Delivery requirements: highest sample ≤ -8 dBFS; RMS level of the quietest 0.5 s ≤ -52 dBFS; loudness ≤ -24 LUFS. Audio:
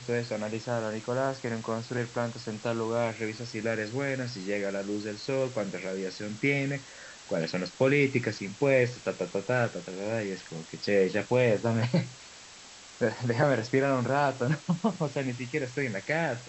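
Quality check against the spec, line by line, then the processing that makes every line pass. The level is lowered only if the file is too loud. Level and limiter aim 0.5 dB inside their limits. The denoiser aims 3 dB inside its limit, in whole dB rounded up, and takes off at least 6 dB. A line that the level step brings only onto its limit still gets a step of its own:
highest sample -12.0 dBFS: OK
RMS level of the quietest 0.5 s -49 dBFS: fail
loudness -29.5 LUFS: OK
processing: denoiser 6 dB, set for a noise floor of -49 dBFS

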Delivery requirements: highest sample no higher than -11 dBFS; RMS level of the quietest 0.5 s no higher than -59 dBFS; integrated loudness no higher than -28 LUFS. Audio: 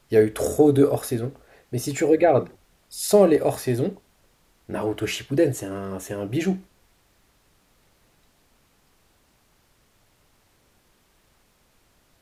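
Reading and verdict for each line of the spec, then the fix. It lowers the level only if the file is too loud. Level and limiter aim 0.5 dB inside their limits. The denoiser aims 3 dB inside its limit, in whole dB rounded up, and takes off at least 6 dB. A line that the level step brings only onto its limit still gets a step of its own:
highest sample -5.0 dBFS: fail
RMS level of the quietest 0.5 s -63 dBFS: OK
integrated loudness -22.5 LUFS: fail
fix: gain -6 dB; limiter -11.5 dBFS

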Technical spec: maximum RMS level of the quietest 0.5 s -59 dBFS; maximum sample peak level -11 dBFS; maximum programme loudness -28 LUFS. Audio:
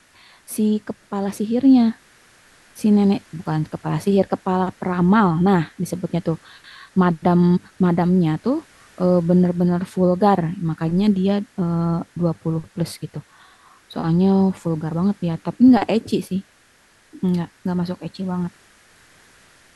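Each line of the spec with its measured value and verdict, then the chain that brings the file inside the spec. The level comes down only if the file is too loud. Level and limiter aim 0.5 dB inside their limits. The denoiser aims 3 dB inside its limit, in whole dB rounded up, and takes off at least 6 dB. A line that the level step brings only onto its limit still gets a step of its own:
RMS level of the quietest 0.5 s -55 dBFS: fail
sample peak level -4.5 dBFS: fail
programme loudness -20.0 LUFS: fail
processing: gain -8.5 dB

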